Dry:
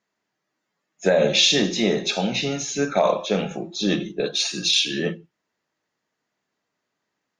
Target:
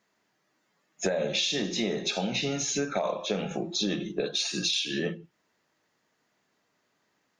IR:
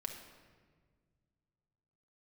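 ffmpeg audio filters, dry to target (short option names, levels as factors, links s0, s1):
-af "acompressor=threshold=0.0224:ratio=5,volume=1.88"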